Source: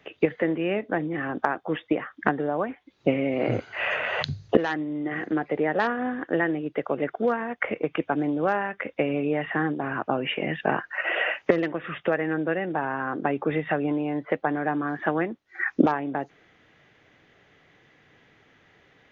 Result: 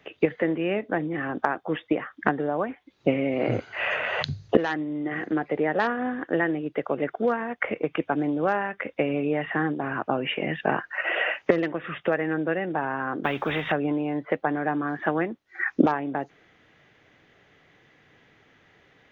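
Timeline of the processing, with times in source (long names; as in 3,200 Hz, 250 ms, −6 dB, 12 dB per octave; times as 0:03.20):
0:13.24–0:13.72: every bin compressed towards the loudest bin 2 to 1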